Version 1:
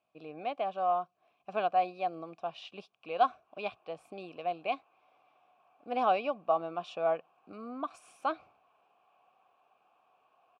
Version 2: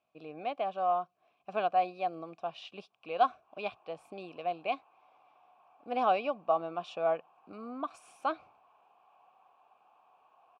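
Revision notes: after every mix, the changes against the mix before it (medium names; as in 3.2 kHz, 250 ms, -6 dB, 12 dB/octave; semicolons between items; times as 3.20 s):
background: add peaking EQ 910 Hz +8.5 dB 0.57 oct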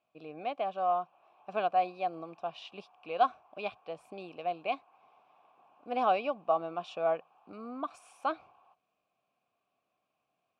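background: entry -2.50 s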